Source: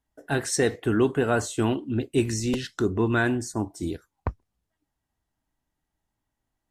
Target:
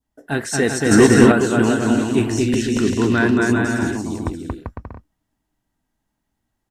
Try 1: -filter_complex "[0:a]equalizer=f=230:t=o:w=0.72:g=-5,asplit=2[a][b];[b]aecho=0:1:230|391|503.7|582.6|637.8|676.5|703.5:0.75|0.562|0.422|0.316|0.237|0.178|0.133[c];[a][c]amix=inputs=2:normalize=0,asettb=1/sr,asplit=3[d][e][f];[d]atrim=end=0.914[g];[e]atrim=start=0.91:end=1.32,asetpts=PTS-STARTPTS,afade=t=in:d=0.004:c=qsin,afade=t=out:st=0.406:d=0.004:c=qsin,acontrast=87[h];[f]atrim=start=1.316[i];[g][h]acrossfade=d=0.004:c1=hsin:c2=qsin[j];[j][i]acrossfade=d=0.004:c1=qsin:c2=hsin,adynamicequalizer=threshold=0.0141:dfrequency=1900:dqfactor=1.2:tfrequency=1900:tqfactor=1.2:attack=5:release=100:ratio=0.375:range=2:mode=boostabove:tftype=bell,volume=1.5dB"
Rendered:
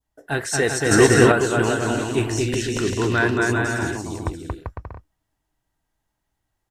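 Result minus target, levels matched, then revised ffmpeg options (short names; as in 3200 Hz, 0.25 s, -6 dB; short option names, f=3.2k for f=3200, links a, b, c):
250 Hz band -4.0 dB
-filter_complex "[0:a]equalizer=f=230:t=o:w=0.72:g=6,asplit=2[a][b];[b]aecho=0:1:230|391|503.7|582.6|637.8|676.5|703.5:0.75|0.562|0.422|0.316|0.237|0.178|0.133[c];[a][c]amix=inputs=2:normalize=0,asettb=1/sr,asplit=3[d][e][f];[d]atrim=end=0.914[g];[e]atrim=start=0.91:end=1.32,asetpts=PTS-STARTPTS,afade=t=in:d=0.004:c=qsin,afade=t=out:st=0.406:d=0.004:c=qsin,acontrast=87[h];[f]atrim=start=1.316[i];[g][h]acrossfade=d=0.004:c1=hsin:c2=qsin[j];[j][i]acrossfade=d=0.004:c1=qsin:c2=hsin,adynamicequalizer=threshold=0.0141:dfrequency=1900:dqfactor=1.2:tfrequency=1900:tqfactor=1.2:attack=5:release=100:ratio=0.375:range=2:mode=boostabove:tftype=bell,volume=1.5dB"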